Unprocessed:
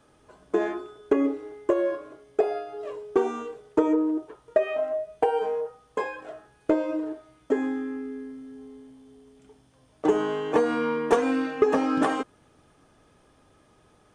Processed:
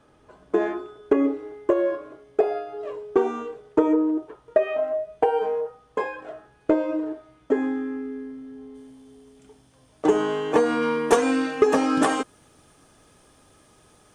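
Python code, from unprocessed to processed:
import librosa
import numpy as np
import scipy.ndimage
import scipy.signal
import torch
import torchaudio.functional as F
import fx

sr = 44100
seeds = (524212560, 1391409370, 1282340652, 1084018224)

y = fx.high_shelf(x, sr, hz=4800.0, db=fx.steps((0.0, -8.5), (8.74, 5.0), (10.81, 12.0)))
y = y * librosa.db_to_amplitude(2.5)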